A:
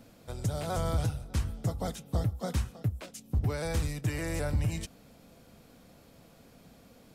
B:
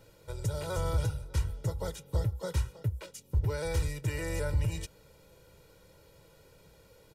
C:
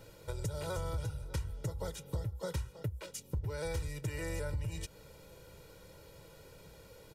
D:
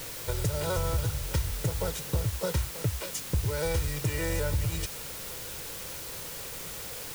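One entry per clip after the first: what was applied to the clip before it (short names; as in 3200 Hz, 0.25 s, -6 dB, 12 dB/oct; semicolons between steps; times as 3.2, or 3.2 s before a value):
comb 2.1 ms, depth 95%; gain -4 dB
compressor 4:1, threshold -39 dBFS, peak gain reduction 13.5 dB; gain +3.5 dB
requantised 8-bit, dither triangular; gain +8 dB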